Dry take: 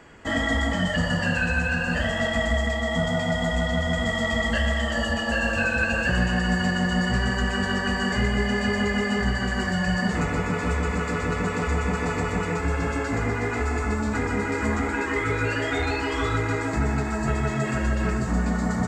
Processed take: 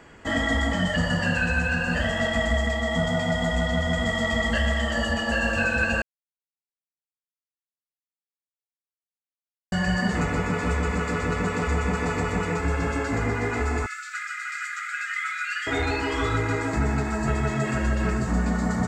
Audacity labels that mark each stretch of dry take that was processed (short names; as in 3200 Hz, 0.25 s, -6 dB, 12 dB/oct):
6.020000	9.720000	mute
13.860000	15.670000	brick-wall FIR high-pass 1200 Hz